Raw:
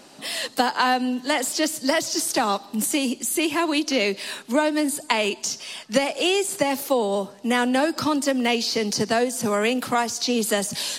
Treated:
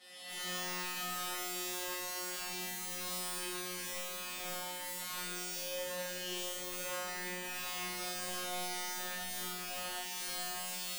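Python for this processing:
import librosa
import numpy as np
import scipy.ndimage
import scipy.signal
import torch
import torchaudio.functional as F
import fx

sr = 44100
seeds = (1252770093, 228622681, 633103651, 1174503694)

p1 = fx.spec_swells(x, sr, rise_s=1.15)
p2 = scipy.signal.sosfilt(scipy.signal.butter(2, 95.0, 'highpass', fs=sr, output='sos'), p1)
p3 = fx.low_shelf(p2, sr, hz=180.0, db=-8.5)
p4 = fx.over_compress(p3, sr, threshold_db=-24.0, ratio=-0.5)
p5 = p3 + F.gain(torch.from_numpy(p4), 0.5).numpy()
p6 = fx.peak_eq(p5, sr, hz=430.0, db=-6.0, octaves=1.2)
p7 = fx.transient(p6, sr, attack_db=-12, sustain_db=9)
p8 = fx.echo_feedback(p7, sr, ms=739, feedback_pct=54, wet_db=-12.0)
p9 = fx.rev_fdn(p8, sr, rt60_s=0.46, lf_ratio=1.2, hf_ratio=0.35, size_ms=23.0, drr_db=0.5)
p10 = (np.mod(10.0 ** (10.0 / 20.0) * p9 + 1.0, 2.0) - 1.0) / 10.0 ** (10.0 / 20.0)
p11 = fx.comb_fb(p10, sr, f0_hz=180.0, decay_s=1.7, harmonics='all', damping=0.0, mix_pct=100)
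y = F.gain(torch.from_numpy(p11), -4.5).numpy()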